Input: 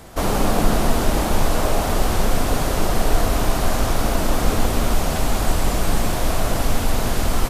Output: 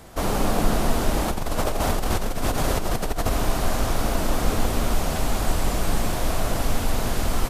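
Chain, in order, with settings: 1.28–3.31 negative-ratio compressor -19 dBFS, ratio -1; gain -3.5 dB

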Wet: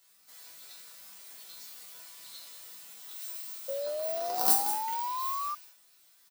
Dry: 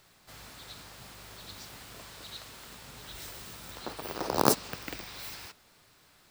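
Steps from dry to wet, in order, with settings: RIAA curve recording; resonator bank E3 minor, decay 0.44 s; echo 0.182 s -9.5 dB; painted sound rise, 3.68–5.55, 540–1200 Hz -41 dBFS; gain +7 dB

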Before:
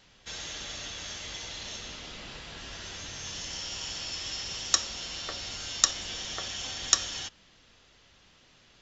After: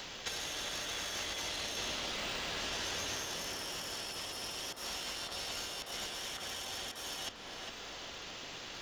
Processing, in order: self-modulated delay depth 0.56 ms; in parallel at -11.5 dB: decimation with a swept rate 15×, swing 100% 0.75 Hz; on the sum: tone controls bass -9 dB, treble 0 dB; negative-ratio compressor -42 dBFS, ratio -0.5; tape echo 0.404 s, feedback 65%, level -4 dB, low-pass 1700 Hz; three-band squash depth 70%

